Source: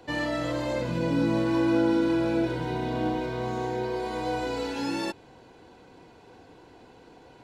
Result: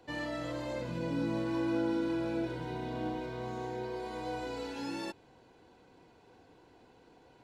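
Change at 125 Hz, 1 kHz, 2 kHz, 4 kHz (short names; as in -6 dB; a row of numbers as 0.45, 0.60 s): -8.5, -8.5, -8.5, -8.5 dB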